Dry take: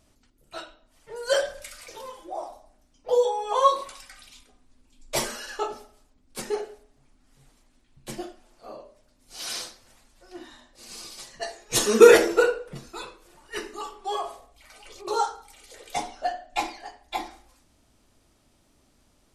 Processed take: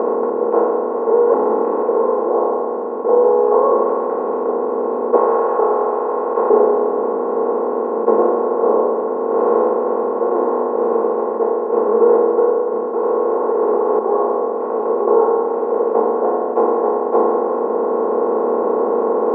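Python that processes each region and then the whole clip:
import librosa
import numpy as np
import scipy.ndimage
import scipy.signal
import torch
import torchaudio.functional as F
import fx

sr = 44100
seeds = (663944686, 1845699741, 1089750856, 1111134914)

y = fx.chain(x, sr, fx.peak_eq(hz=1100.0, db=-9.0, octaves=2.4),
    fx.ring_mod(carrier_hz=290.0),
    fx.env_flatten(amount_pct=70), at=(1.34, 1.83))
y = fx.chain(y, sr, fx.highpass(hz=950.0, slope=24),
    fx.env_flatten(amount_pct=50), at=(5.16, 6.5))
y = fx.chain(y, sr, fx.highpass(hz=340.0, slope=24),
    fx.over_compress(threshold_db=-46.0, ratio=-1.0),
    fx.leveller(passes=5), at=(13.03, 13.99))
y = fx.bin_compress(y, sr, power=0.2)
y = scipy.signal.sosfilt(scipy.signal.cheby1(3, 1.0, [240.0, 990.0], 'bandpass', fs=sr, output='sos'), y)
y = fx.rider(y, sr, range_db=10, speed_s=2.0)
y = F.gain(torch.from_numpy(y), -1.0).numpy()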